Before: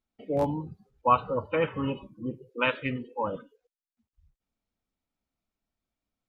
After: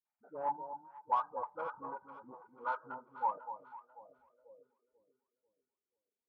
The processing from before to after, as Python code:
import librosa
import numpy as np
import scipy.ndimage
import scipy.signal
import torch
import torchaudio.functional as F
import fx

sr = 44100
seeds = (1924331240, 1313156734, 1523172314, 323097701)

p1 = fx.freq_compress(x, sr, knee_hz=1200.0, ratio=4.0)
p2 = fx.dereverb_blind(p1, sr, rt60_s=1.1)
p3 = 10.0 ** (-24.0 / 20.0) * np.tanh(p2 / 10.0 ** (-24.0 / 20.0))
p4 = fx.dispersion(p3, sr, late='highs', ms=57.0, hz=320.0)
p5 = p4 + fx.echo_alternate(p4, sr, ms=246, hz=970.0, feedback_pct=61, wet_db=-9.0, dry=0)
p6 = fx.filter_sweep_bandpass(p5, sr, from_hz=900.0, to_hz=410.0, start_s=3.75, end_s=4.86, q=6.5)
y = p6 * librosa.db_to_amplitude(5.0)